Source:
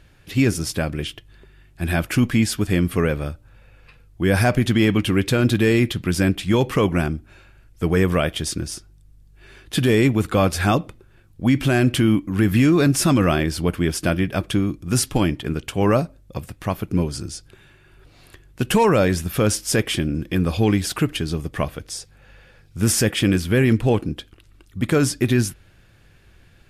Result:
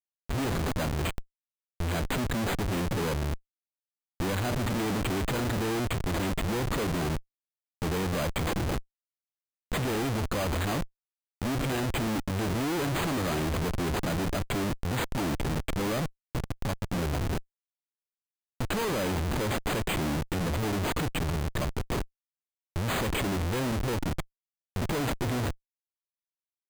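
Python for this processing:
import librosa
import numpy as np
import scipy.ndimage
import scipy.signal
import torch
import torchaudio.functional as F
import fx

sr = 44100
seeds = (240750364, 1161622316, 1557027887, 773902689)

y = np.repeat(x[::8], 8)[:len(x)]
y = fx.schmitt(y, sr, flips_db=-30.0)
y = y * librosa.db_to_amplitude(-7.5)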